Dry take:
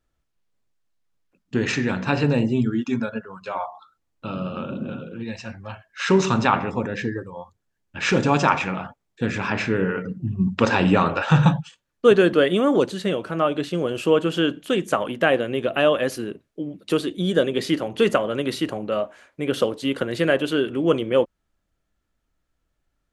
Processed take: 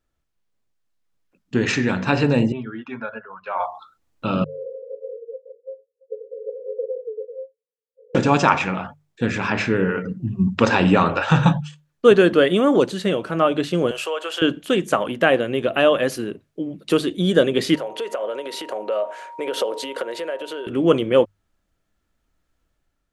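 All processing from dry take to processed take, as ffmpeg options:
-filter_complex "[0:a]asettb=1/sr,asplit=3[a][b][c];[a]atrim=end=2.524[d];[b]atrim=start=2.52:end=3.6,asetpts=PTS-STARTPTS,afade=t=in:d=0.004:c=qsin,afade=t=out:st=1.076:d=0.004:c=qsin,lowpass=f=5.4k:w=0.5412,lowpass=f=5.4k:w=1.3066,acrossover=split=550 2500:gain=0.178 1 0.0891[e][f][g];[e][f][g]amix=inputs=3:normalize=0[h];[c]atrim=start=3.596[i];[d][h]acrossfade=d=0.004:c1=hsin:c2=qsin[j];[j][i]acrossfade=d=0.004:c1=qsin:c2=hsin,asettb=1/sr,asplit=3[k][l][m];[k]atrim=end=4.444[n];[l]atrim=start=4.44:end=8.15,asetpts=PTS-STARTPTS,afade=t=in:d=0.004:c=qsin,afade=t=out:st=3.706:d=0.004:c=qsin,acompressor=threshold=-33dB:ratio=1.5:attack=3.2:release=140:knee=1:detection=peak,asuperpass=centerf=480:order=20:qfactor=4.2[o];[m]atrim=start=8.146[p];[n][o]acrossfade=d=0.004:c1=hsin:c2=qsin[q];[q][p]acrossfade=d=0.004:c1=qsin:c2=hsin,asettb=1/sr,asplit=3[r][s][t];[r]atrim=end=13.914[u];[s]atrim=start=13.91:end=14.42,asetpts=PTS-STARTPTS,afade=t=in:d=0.004:c=qsin,afade=t=out:st=0.506:d=0.004:c=qsin,highpass=f=560:w=0.5412,highpass=f=560:w=1.3066,acompressor=threshold=-27dB:ratio=3:attack=3.2:release=140:knee=1:detection=peak[v];[t]atrim=start=14.416[w];[u][v]acrossfade=d=0.004:c1=hsin:c2=qsin[x];[x][w]acrossfade=d=0.004:c1=qsin:c2=hsin,asettb=1/sr,asplit=3[y][z][aa];[y]atrim=end=17.754[ab];[z]atrim=start=17.75:end=20.67,asetpts=PTS-STARTPTS,afade=t=in:d=0.004:c=qsin,afade=t=out:st=2.916:d=0.004:c=qsin,acompressor=threshold=-30dB:ratio=10:attack=3.2:release=140:knee=1:detection=peak,highpass=f=510:t=q:w=2.1,aeval=exprs='val(0)+0.00631*sin(2*PI*940*n/s)':c=same[ac];[aa]atrim=start=20.666[ad];[ab][ac]acrossfade=d=0.004:c1=hsin:c2=qsin[ae];[ae][ad]acrossfade=d=0.004:c1=qsin:c2=hsin,bandreject=f=50:t=h:w=6,bandreject=f=100:t=h:w=6,bandreject=f=150:t=h:w=6,dynaudnorm=f=780:g=3:m=11.5dB,volume=-1dB"

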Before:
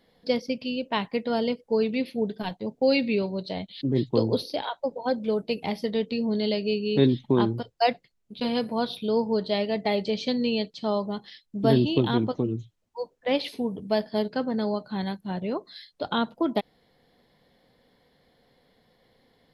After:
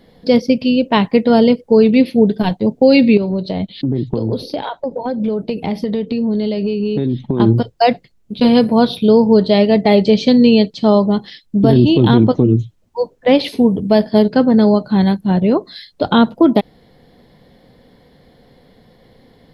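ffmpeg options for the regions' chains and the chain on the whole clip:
-filter_complex "[0:a]asettb=1/sr,asplit=3[a][b][c];[a]atrim=end=3.174[d];[b]atrim=start=3.17:end=7.4,asetpts=PTS-STARTPTS,afade=t=in:d=0.004:c=qsin,afade=t=out:st=4.226:d=0.004:c=qsin,highshelf=f=4.1k:g=-6.5,acompressor=threshold=-31dB:ratio=6:attack=3.2:release=140:knee=1:detection=peak[e];[c]atrim=start=7.396[f];[d][e]acrossfade=d=0.004:c1=hsin:c2=qsin[g];[g][f]acrossfade=d=0.004:c1=qsin:c2=hsin,lowshelf=f=480:g=9,alimiter=level_in=11dB:limit=-1dB:release=50:level=0:latency=1,volume=-1dB"

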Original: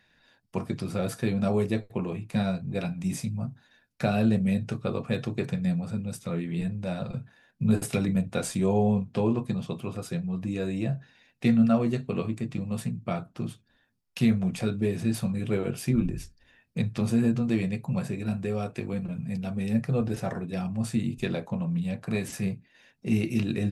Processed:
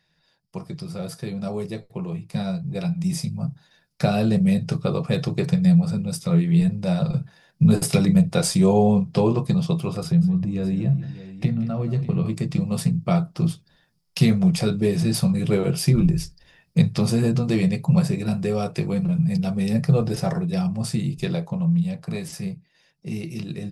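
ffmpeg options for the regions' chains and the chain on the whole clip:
-filter_complex "[0:a]asettb=1/sr,asplit=3[a][b][c];[a]atrim=end=10.034[d];[b]atrim=start=10.03:end=12.26,asetpts=PTS-STARTPTS,afade=t=in:d=0.004:c=qsin,afade=t=out:st=2.226:d=0.004:c=qsin,bass=f=250:g=10,treble=f=4k:g=-8,acompressor=threshold=-32dB:ratio=2.5:attack=3.2:release=140:knee=1:detection=peak,aecho=1:1:181|602:0.178|0.178,atrim=end_sample=98343[e];[c]atrim=start=12.256[f];[d][e]acrossfade=d=0.004:c1=hsin:c2=qsin[g];[g][f]acrossfade=d=0.004:c1=qsin:c2=hsin,equalizer=f=100:t=o:w=0.33:g=-5,equalizer=f=160:t=o:w=0.33:g=12,equalizer=f=250:t=o:w=0.33:g=-11,equalizer=f=1.6k:t=o:w=0.33:g=-5,equalizer=f=2.5k:t=o:w=0.33:g=-3,equalizer=f=5k:t=o:w=0.33:g=10,equalizer=f=10k:t=o:w=0.33:g=4,dynaudnorm=f=380:g=17:m=14dB,volume=-3.5dB"

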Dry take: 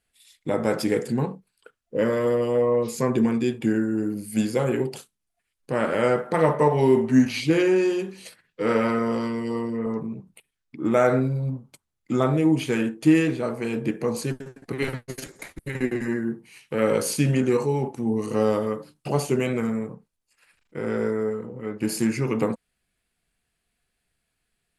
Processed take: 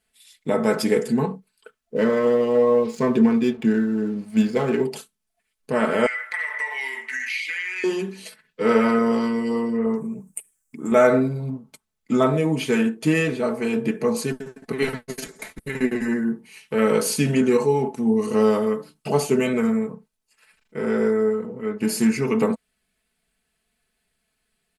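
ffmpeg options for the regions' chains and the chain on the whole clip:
-filter_complex "[0:a]asettb=1/sr,asplit=3[a][b][c];[a]atrim=end=1.964[d];[b]atrim=start=1.96:end=4.83,asetpts=PTS-STARTPTS,afade=t=in:d=0.004:c=qsin,afade=t=out:st=2.866:d=0.004:c=qsin,adynamicsmooth=sensitivity=6:basefreq=2.6k,aeval=exprs='sgn(val(0))*max(abs(val(0))-0.00251,0)':c=same[e];[c]atrim=start=4.826[f];[d][e]acrossfade=d=0.004:c1=hsin:c2=qsin[g];[g][f]acrossfade=d=0.004:c1=qsin:c2=hsin,asettb=1/sr,asplit=3[h][i][j];[h]atrim=end=6.064[k];[i]atrim=start=6.06:end=7.84,asetpts=PTS-STARTPTS,afade=t=in:d=0.004:c=qsin,afade=t=out:st=1.776:d=0.004:c=qsin,highpass=f=2k:t=q:w=7.7,acompressor=threshold=-28dB:ratio=5:attack=3.2:release=140:knee=1:detection=peak[l];[j]atrim=start=7.836[m];[k][l]acrossfade=d=0.004:c1=hsin:c2=qsin[n];[n][m]acrossfade=d=0.004:c1=qsin:c2=hsin,asettb=1/sr,asplit=3[o][p][q];[o]atrim=end=9.954[r];[p]atrim=start=9.95:end=10.92,asetpts=PTS-STARTPTS,afade=t=in:d=0.004:c=qsin,afade=t=out:st=0.966:d=0.004:c=qsin,acompressor=threshold=-34dB:ratio=1.5:attack=3.2:release=140:knee=1:detection=peak,highshelf=f=5.7k:t=q:w=3:g=12.5[s];[q]atrim=start=10.916[t];[r][s]acrossfade=d=0.004:c1=hsin:c2=qsin[u];[u][t]acrossfade=d=0.004:c1=qsin:c2=hsin,lowshelf=f=84:g=-5.5,aecho=1:1:4.6:0.61,volume=2dB"

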